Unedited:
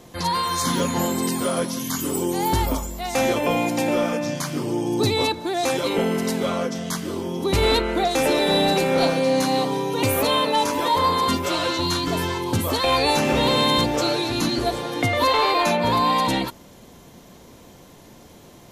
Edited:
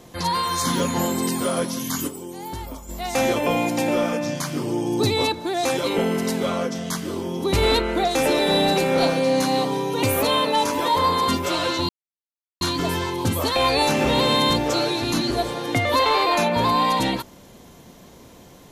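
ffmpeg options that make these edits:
ffmpeg -i in.wav -filter_complex "[0:a]asplit=4[link_01][link_02][link_03][link_04];[link_01]atrim=end=2.21,asetpts=PTS-STARTPTS,afade=type=out:start_time=2.07:duration=0.14:curve=exp:silence=0.266073[link_05];[link_02]atrim=start=2.21:end=2.76,asetpts=PTS-STARTPTS,volume=-11.5dB[link_06];[link_03]atrim=start=2.76:end=11.89,asetpts=PTS-STARTPTS,afade=type=in:duration=0.14:curve=exp:silence=0.266073,afade=type=out:start_time=9.126:duration=0.004:curve=hsin,apad=pad_dur=0.72[link_07];[link_04]atrim=start=11.89,asetpts=PTS-STARTPTS,afade=type=in:duration=0.004:curve=hsin[link_08];[link_05][link_06][link_07][link_08]concat=n=4:v=0:a=1" out.wav

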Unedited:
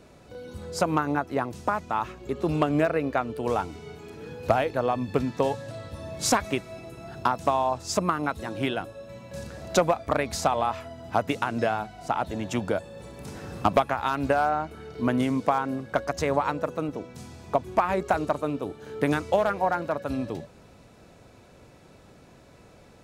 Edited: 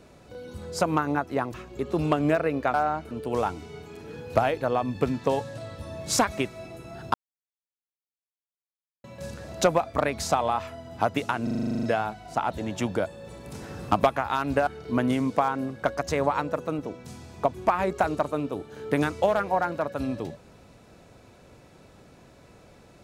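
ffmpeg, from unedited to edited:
ffmpeg -i in.wav -filter_complex "[0:a]asplit=17[link_01][link_02][link_03][link_04][link_05][link_06][link_07][link_08][link_09][link_10][link_11][link_12][link_13][link_14][link_15][link_16][link_17];[link_01]atrim=end=1.542[link_18];[link_02]atrim=start=2.038:end=3.242[link_19];[link_03]atrim=start=14.398:end=14.772[link_20];[link_04]atrim=start=3.238:end=7.27,asetpts=PTS-STARTPTS,afade=type=out:start_time=4.028:duration=0.004:curve=hsin[link_21];[link_05]atrim=start=7.27:end=9.17,asetpts=PTS-STARTPTS,volume=0[link_22];[link_06]atrim=start=9.17:end=11.602,asetpts=PTS-STARTPTS,afade=type=in:duration=0.004:curve=hsin[link_23];[link_07]atrim=start=11.558:end=11.602[link_24];[link_08]atrim=start=11.558:end=11.602[link_25];[link_09]atrim=start=11.558:end=11.602[link_26];[link_10]atrim=start=11.558:end=11.602[link_27];[link_11]atrim=start=11.558:end=11.602[link_28];[link_12]atrim=start=11.558:end=11.602[link_29];[link_13]atrim=start=11.558:end=11.602[link_30];[link_14]atrim=start=11.558:end=11.602[link_31];[link_15]atrim=start=11.558:end=11.602[link_32];[link_16]atrim=start=11.558:end=14.402[link_33];[link_17]atrim=start=14.768[link_34];[link_18][link_19]acrossfade=duration=0.004:curve1=hsin:curve2=hsin[link_35];[link_35][link_20]acrossfade=duration=0.004:curve1=hsin:curve2=hsin[link_36];[link_21][link_22][link_23]concat=n=3:v=0:a=1[link_37];[link_36][link_37]acrossfade=duration=0.004:curve1=hsin:curve2=hsin[link_38];[link_38][link_24]acrossfade=duration=0.004:curve1=hsin:curve2=hsin[link_39];[link_39][link_25]acrossfade=duration=0.004:curve1=hsin:curve2=hsin[link_40];[link_40][link_26]acrossfade=duration=0.004:curve1=hsin:curve2=hsin[link_41];[link_41][link_27]acrossfade=duration=0.004:curve1=hsin:curve2=hsin[link_42];[link_42][link_28]acrossfade=duration=0.004:curve1=hsin:curve2=hsin[link_43];[link_43][link_29]acrossfade=duration=0.004:curve1=hsin:curve2=hsin[link_44];[link_44][link_30]acrossfade=duration=0.004:curve1=hsin:curve2=hsin[link_45];[link_45][link_31]acrossfade=duration=0.004:curve1=hsin:curve2=hsin[link_46];[link_46][link_32]acrossfade=duration=0.004:curve1=hsin:curve2=hsin[link_47];[link_47][link_33]acrossfade=duration=0.004:curve1=hsin:curve2=hsin[link_48];[link_48][link_34]acrossfade=duration=0.004:curve1=hsin:curve2=hsin" out.wav

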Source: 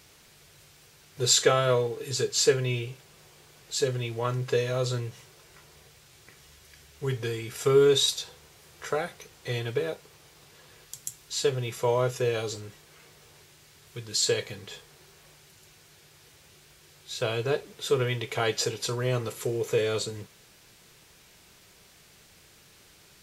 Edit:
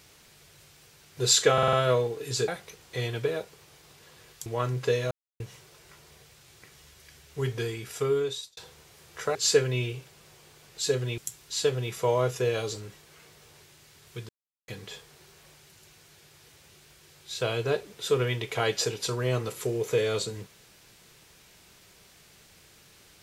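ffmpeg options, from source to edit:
ffmpeg -i in.wav -filter_complex "[0:a]asplit=14[link_01][link_02][link_03][link_04][link_05][link_06][link_07][link_08][link_09][link_10][link_11][link_12][link_13][link_14];[link_01]atrim=end=1.582[link_15];[link_02]atrim=start=1.528:end=1.582[link_16];[link_03]atrim=start=1.528:end=1.582[link_17];[link_04]atrim=start=1.528:end=1.582[link_18];[link_05]atrim=start=1.528:end=2.282[link_19];[link_06]atrim=start=8.998:end=10.982[link_20];[link_07]atrim=start=4.108:end=4.76,asetpts=PTS-STARTPTS,afade=type=out:start_time=0.648:duration=0.004:curve=hsin[link_21];[link_08]atrim=start=4.76:end=5.05,asetpts=PTS-STARTPTS,volume=0[link_22];[link_09]atrim=start=5.05:end=8.22,asetpts=PTS-STARTPTS,afade=type=in:duration=0.004:curve=hsin,afade=type=out:start_time=2.26:duration=0.91[link_23];[link_10]atrim=start=8.22:end=9.002,asetpts=PTS-STARTPTS,afade=type=in:duration=0.004:curve=hsin[link_24];[link_11]atrim=start=2.278:end=4.112[link_25];[link_12]atrim=start=10.978:end=14.09,asetpts=PTS-STARTPTS,afade=type=out:start_time=3.108:duration=0.004:curve=hsin[link_26];[link_13]atrim=start=14.09:end=14.48,asetpts=PTS-STARTPTS,volume=0[link_27];[link_14]atrim=start=14.48,asetpts=PTS-STARTPTS,afade=type=in:duration=0.004:curve=hsin[link_28];[link_15][link_16]acrossfade=duration=0.004:curve1=hsin:curve2=hsin[link_29];[link_29][link_17]acrossfade=duration=0.004:curve1=hsin:curve2=hsin[link_30];[link_30][link_18]acrossfade=duration=0.004:curve1=hsin:curve2=hsin[link_31];[link_31][link_19]acrossfade=duration=0.004:curve1=hsin:curve2=hsin[link_32];[link_32][link_20]acrossfade=duration=0.004:curve1=hsin:curve2=hsin[link_33];[link_21][link_22][link_23][link_24]concat=n=4:v=0:a=1[link_34];[link_33][link_34]acrossfade=duration=0.004:curve1=hsin:curve2=hsin[link_35];[link_35][link_25]acrossfade=duration=0.004:curve1=hsin:curve2=hsin[link_36];[link_26][link_27][link_28]concat=n=3:v=0:a=1[link_37];[link_36][link_37]acrossfade=duration=0.004:curve1=hsin:curve2=hsin" out.wav

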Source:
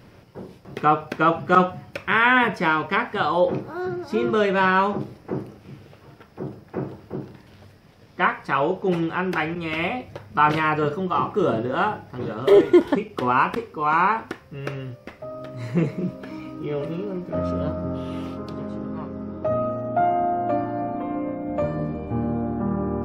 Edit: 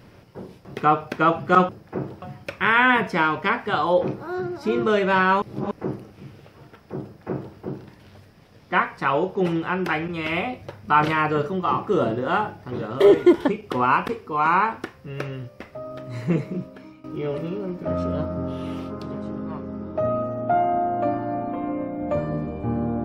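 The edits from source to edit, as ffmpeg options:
ffmpeg -i in.wav -filter_complex "[0:a]asplit=6[link_01][link_02][link_03][link_04][link_05][link_06];[link_01]atrim=end=1.692[link_07];[link_02]atrim=start=6.498:end=7.032[link_08];[link_03]atrim=start=1.688:end=4.892[link_09];[link_04]atrim=start=4.888:end=5.182,asetpts=PTS-STARTPTS,areverse[link_10];[link_05]atrim=start=5.178:end=16.51,asetpts=PTS-STARTPTS,afade=type=out:start_time=10.382:duration=0.95:curve=qsin:silence=0.133352[link_11];[link_06]atrim=start=16.51,asetpts=PTS-STARTPTS,afade=type=in:duration=0.004:curve=hsin:silence=0.133352[link_12];[link_07][link_08]acrossfade=duration=0.004:curve1=hsin:curve2=hsin[link_13];[link_13][link_09]acrossfade=duration=0.004:curve1=hsin:curve2=hsin[link_14];[link_14][link_10]acrossfade=duration=0.004:curve1=hsin:curve2=hsin[link_15];[link_11][link_12]concat=n=2:v=0:a=1[link_16];[link_15][link_16]acrossfade=duration=0.004:curve1=hsin:curve2=hsin" out.wav

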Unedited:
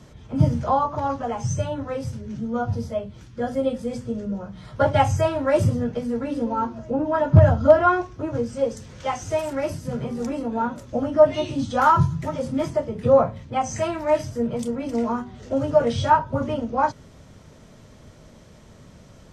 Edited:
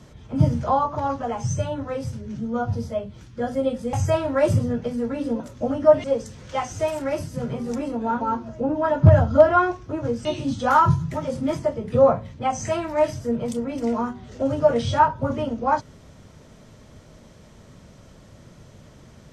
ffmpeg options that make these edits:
ffmpeg -i in.wav -filter_complex "[0:a]asplit=6[link_01][link_02][link_03][link_04][link_05][link_06];[link_01]atrim=end=3.932[link_07];[link_02]atrim=start=5.038:end=6.512[link_08];[link_03]atrim=start=10.718:end=11.362[link_09];[link_04]atrim=start=8.548:end=10.722[link_10];[link_05]atrim=start=6.508:end=8.552[link_11];[link_06]atrim=start=11.358[link_12];[link_07][link_08]acrossfade=duration=0.004:curve1=hsin:curve2=hsin[link_13];[link_13][link_09]acrossfade=duration=0.004:curve1=hsin:curve2=hsin[link_14];[link_14][link_10]acrossfade=duration=0.004:curve1=hsin:curve2=hsin[link_15];[link_15][link_11]acrossfade=duration=0.004:curve1=hsin:curve2=hsin[link_16];[link_16][link_12]acrossfade=duration=0.004:curve1=hsin:curve2=hsin" out.wav

